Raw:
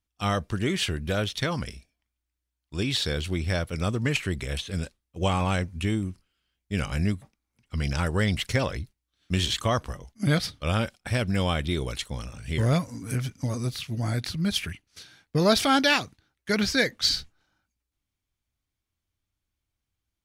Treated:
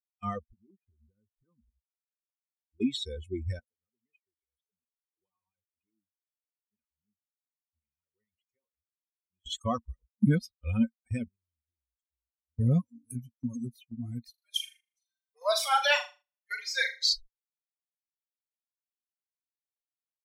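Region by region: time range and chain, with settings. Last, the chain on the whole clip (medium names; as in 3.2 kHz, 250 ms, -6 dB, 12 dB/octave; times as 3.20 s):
0.45–2.81 s: low-pass 1.5 kHz 24 dB/octave + peaking EQ 680 Hz -7.5 dB 1.2 oct + compression 16:1, threshold -31 dBFS
3.59–9.46 s: bass shelf 250 Hz -5.5 dB + flange 1.8 Hz, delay 4.3 ms, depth 7.8 ms, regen +68% + compression 2:1, threshold -47 dBFS
11.28–12.59 s: amplifier tone stack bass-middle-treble 6-0-2 + transformer saturation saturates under 270 Hz
14.30–17.13 s: steep high-pass 580 Hz + flutter echo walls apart 6.8 m, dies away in 0.87 s + upward compressor, threshold -33 dBFS
whole clip: expander on every frequency bin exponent 3; gate -54 dBFS, range -9 dB; peaking EQ 230 Hz +13.5 dB 0.44 oct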